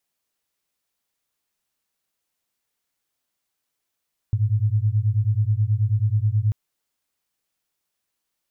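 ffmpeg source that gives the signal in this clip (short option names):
-f lavfi -i "aevalsrc='0.0944*(sin(2*PI*102*t)+sin(2*PI*111.3*t))':d=2.19:s=44100"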